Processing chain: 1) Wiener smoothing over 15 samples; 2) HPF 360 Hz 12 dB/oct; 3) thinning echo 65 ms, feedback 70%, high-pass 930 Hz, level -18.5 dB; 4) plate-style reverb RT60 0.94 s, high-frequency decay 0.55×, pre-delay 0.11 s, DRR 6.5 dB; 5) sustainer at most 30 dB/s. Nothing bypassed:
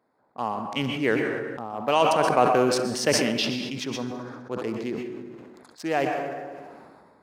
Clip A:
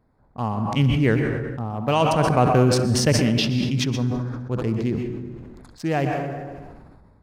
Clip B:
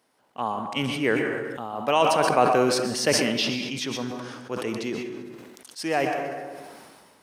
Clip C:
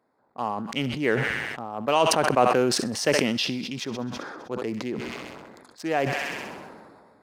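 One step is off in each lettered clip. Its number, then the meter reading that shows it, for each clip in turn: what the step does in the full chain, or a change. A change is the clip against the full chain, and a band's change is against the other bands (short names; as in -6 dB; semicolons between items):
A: 2, 125 Hz band +14.5 dB; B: 1, 4 kHz band +1.5 dB; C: 4, crest factor change +2.5 dB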